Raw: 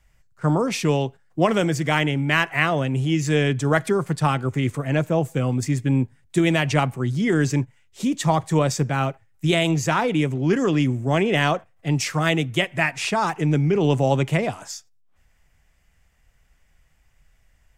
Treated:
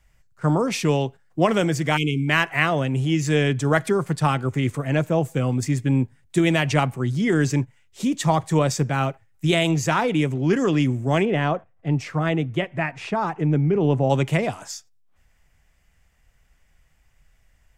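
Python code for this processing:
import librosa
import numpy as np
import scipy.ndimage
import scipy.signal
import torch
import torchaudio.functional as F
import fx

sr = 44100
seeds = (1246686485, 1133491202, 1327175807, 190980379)

y = fx.spec_erase(x, sr, start_s=1.97, length_s=0.31, low_hz=470.0, high_hz=2100.0)
y = fx.lowpass(y, sr, hz=1100.0, slope=6, at=(11.25, 14.1))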